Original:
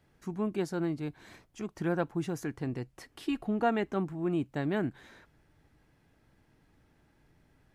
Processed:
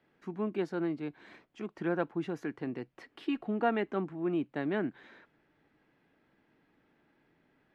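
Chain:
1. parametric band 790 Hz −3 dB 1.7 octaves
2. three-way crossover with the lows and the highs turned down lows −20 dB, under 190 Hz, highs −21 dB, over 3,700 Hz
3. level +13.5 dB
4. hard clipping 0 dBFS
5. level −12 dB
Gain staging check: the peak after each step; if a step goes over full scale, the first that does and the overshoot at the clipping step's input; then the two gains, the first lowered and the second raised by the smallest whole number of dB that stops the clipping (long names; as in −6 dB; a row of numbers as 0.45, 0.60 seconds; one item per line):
−18.0, −16.5, −3.0, −3.0, −15.0 dBFS
no step passes full scale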